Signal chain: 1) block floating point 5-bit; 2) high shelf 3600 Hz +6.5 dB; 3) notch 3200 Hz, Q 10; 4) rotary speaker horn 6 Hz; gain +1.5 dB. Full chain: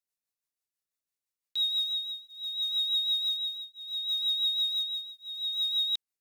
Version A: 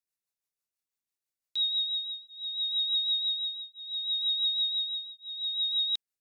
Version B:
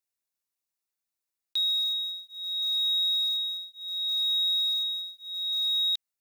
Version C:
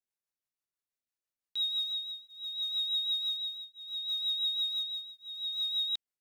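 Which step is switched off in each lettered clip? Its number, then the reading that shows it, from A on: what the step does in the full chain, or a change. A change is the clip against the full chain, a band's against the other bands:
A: 1, distortion -28 dB; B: 4, crest factor change -2.0 dB; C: 2, loudness change -3.5 LU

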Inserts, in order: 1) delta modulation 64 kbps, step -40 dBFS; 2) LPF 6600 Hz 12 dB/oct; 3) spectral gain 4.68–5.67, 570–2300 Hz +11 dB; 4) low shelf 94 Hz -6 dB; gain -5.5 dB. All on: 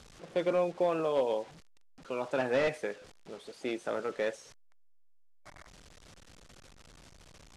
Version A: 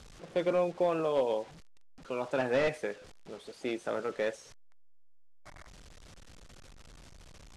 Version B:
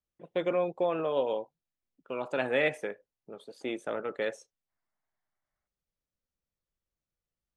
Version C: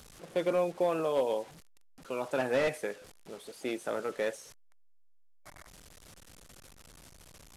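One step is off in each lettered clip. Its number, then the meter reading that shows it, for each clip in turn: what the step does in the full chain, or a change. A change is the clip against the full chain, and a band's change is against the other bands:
4, 125 Hz band +1.5 dB; 1, 8 kHz band -5.0 dB; 2, 8 kHz band +4.5 dB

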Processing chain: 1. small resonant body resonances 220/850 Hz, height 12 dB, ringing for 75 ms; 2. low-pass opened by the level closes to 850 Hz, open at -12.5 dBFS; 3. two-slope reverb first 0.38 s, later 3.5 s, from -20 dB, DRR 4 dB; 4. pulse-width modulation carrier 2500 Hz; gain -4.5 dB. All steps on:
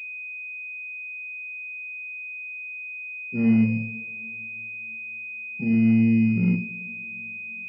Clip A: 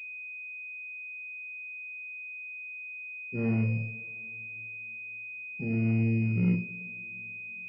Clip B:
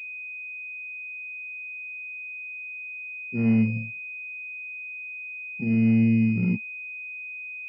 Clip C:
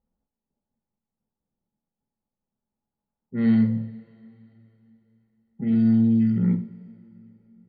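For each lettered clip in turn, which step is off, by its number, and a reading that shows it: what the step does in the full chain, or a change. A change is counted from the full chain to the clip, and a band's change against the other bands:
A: 1, 250 Hz band -8.5 dB; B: 3, 250 Hz band -2.0 dB; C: 4, 2 kHz band -20.0 dB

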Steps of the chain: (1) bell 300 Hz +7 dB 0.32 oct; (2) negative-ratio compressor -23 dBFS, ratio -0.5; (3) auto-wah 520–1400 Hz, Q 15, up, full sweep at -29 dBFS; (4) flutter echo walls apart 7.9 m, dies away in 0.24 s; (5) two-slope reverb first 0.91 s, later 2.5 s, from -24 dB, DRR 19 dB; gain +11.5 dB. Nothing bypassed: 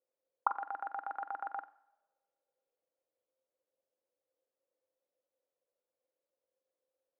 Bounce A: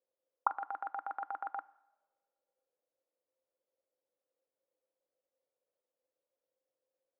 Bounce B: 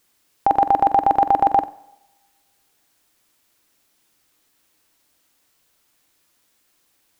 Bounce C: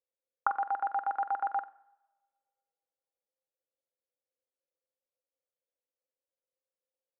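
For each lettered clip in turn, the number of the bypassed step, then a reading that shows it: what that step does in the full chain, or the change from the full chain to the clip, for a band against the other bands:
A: 4, echo-to-direct -10.5 dB to -19.0 dB; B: 3, crest factor change -12.0 dB; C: 2, crest factor change -4.5 dB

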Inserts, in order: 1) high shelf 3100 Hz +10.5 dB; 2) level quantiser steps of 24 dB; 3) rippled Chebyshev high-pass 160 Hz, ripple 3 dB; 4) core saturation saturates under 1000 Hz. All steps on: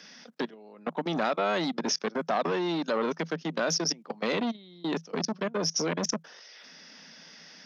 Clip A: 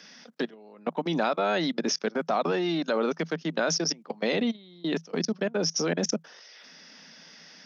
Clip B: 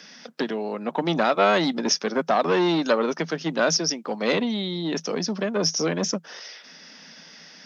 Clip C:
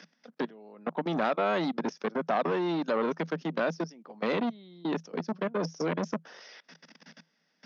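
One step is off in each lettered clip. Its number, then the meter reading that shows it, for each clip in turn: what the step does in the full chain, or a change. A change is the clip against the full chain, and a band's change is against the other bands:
4, 1 kHz band -2.0 dB; 2, crest factor change +2.0 dB; 1, loudness change -1.5 LU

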